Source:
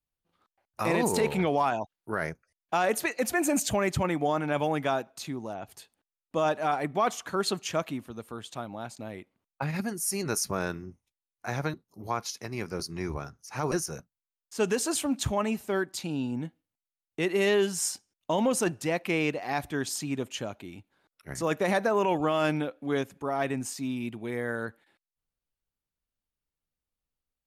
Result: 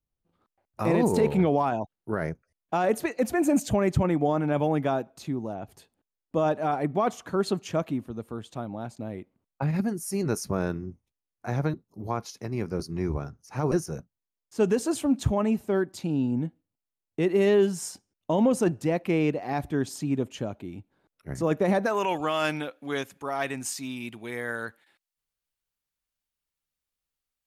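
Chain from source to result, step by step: tilt shelf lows +6.5 dB, about 830 Hz, from 21.85 s lows -4.5 dB

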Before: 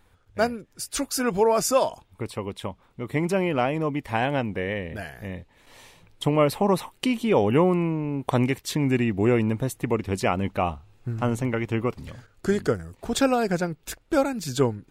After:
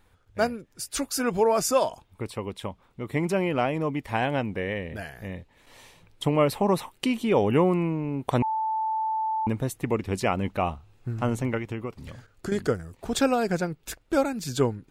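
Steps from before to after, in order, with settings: 8.42–9.47 bleep 879 Hz -22.5 dBFS; 11.57–12.52 compressor 6:1, threshold -28 dBFS, peak gain reduction 10.5 dB; gain -1.5 dB

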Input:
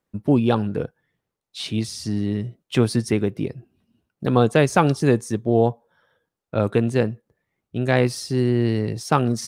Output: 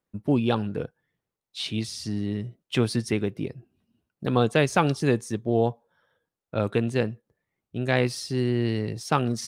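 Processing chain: dynamic EQ 3100 Hz, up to +5 dB, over -41 dBFS, Q 0.84; gain -5 dB

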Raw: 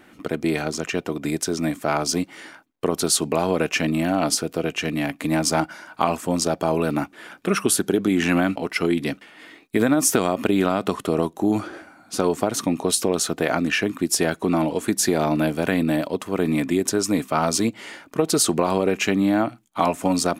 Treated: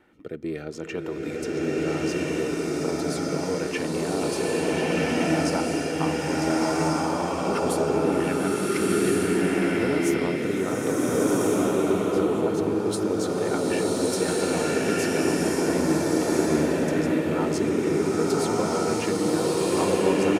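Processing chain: high shelf 3300 Hz -9 dB; comb 2.2 ms, depth 32%; in parallel at -8 dB: soft clip -22 dBFS, distortion -8 dB; on the sum: rotary speaker horn 0.7 Hz, later 6.7 Hz, at 5.66; bloom reverb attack 1.39 s, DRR -8 dB; gain -8.5 dB

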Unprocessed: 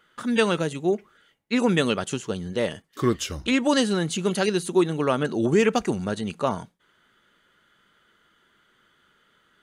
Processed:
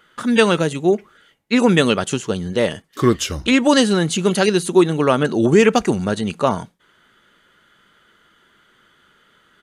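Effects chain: downsampling 32000 Hz; gain +7 dB

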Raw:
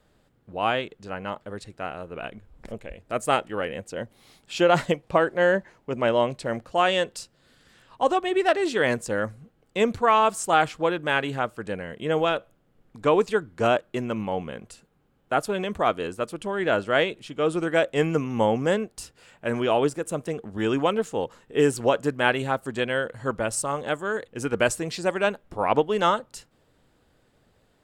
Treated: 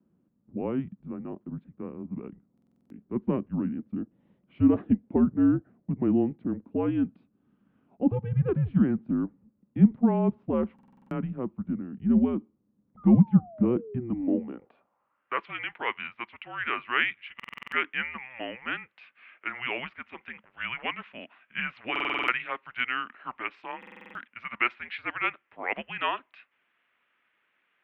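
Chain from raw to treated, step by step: mistuned SSB -250 Hz 280–3400 Hz; painted sound fall, 12.97–14.52, 200–1300 Hz -35 dBFS; band-pass sweep 200 Hz -> 2100 Hz, 14.09–15.42; stuck buffer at 2.53/10.74/17.35/21.91/23.78, samples 2048, times 7; gain +6 dB

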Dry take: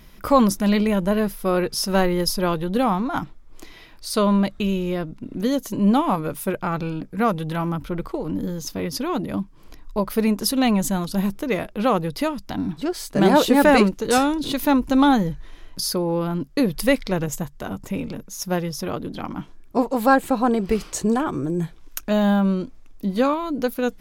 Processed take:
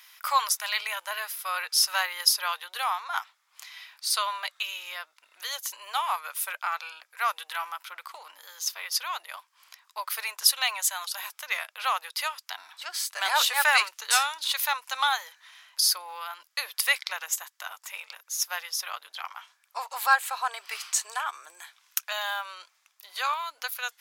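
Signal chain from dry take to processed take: Bessel high-pass 1500 Hz, order 6; gain +3.5 dB

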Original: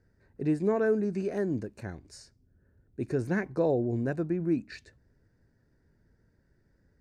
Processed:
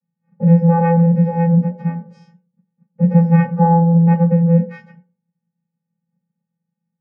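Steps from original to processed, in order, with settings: gate -60 dBFS, range -27 dB; vocoder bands 8, square 168 Hz; reverb RT60 0.35 s, pre-delay 3 ms, DRR -8.5 dB

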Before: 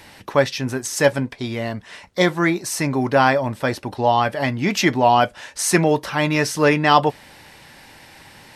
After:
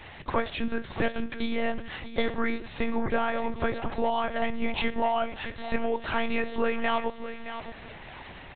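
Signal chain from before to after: compressor 8:1, threshold -23 dBFS, peak gain reduction 14.5 dB; feedback echo 0.62 s, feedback 27%, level -11 dB; on a send at -15 dB: reverb RT60 0.50 s, pre-delay 10 ms; on the sum: monotone LPC vocoder at 8 kHz 230 Hz

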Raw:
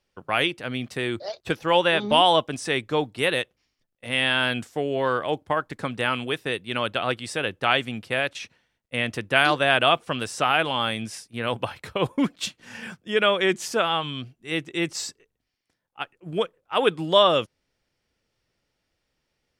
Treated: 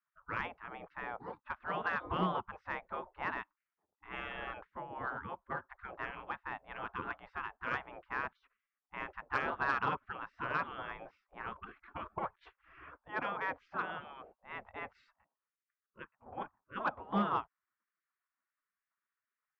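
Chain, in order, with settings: ladder low-pass 920 Hz, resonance 45%; spectral gate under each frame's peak -25 dB weak; soft clip -37.5 dBFS, distortion -22 dB; gain +16.5 dB

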